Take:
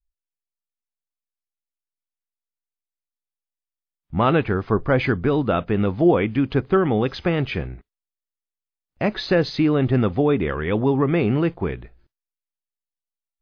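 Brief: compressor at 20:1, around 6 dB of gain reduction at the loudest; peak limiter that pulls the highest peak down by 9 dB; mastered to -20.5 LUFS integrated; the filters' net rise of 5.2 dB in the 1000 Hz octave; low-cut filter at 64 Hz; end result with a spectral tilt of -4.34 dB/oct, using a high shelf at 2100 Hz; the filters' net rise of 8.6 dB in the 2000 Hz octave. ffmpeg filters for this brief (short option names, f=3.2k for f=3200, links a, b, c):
-af "highpass=64,equalizer=f=1k:t=o:g=3,equalizer=f=2k:t=o:g=5.5,highshelf=f=2.1k:g=8,acompressor=threshold=-16dB:ratio=20,volume=5dB,alimiter=limit=-10.5dB:level=0:latency=1"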